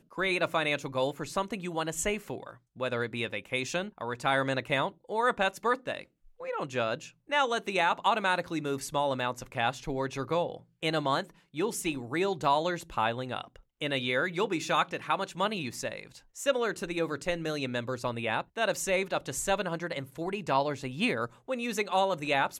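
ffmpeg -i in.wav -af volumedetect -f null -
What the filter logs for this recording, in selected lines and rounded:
mean_volume: -31.2 dB
max_volume: -13.1 dB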